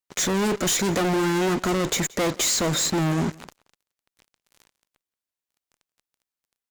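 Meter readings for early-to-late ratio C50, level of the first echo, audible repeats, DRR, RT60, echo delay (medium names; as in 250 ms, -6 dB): no reverb, -23.5 dB, 1, no reverb, no reverb, 177 ms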